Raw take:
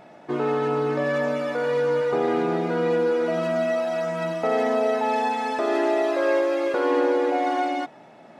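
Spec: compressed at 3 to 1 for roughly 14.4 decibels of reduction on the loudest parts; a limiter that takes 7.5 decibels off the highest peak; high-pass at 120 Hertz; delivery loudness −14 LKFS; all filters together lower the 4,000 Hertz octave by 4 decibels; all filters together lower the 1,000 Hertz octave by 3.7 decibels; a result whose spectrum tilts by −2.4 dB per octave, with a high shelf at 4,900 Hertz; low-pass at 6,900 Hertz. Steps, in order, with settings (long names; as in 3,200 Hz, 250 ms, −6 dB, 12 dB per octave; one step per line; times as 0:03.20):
high-pass filter 120 Hz
low-pass filter 6,900 Hz
parametric band 1,000 Hz −5 dB
parametric band 4,000 Hz −3 dB
high-shelf EQ 4,900 Hz −4 dB
downward compressor 3 to 1, threshold −40 dBFS
level +27.5 dB
brickwall limiter −6.5 dBFS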